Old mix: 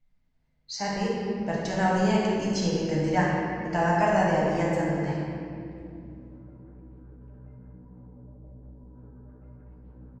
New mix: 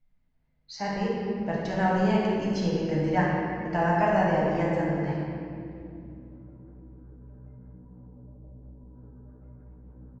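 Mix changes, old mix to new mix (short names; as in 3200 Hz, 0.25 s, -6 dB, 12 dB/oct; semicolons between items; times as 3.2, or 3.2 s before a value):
background: add air absorption 410 m; master: add air absorption 150 m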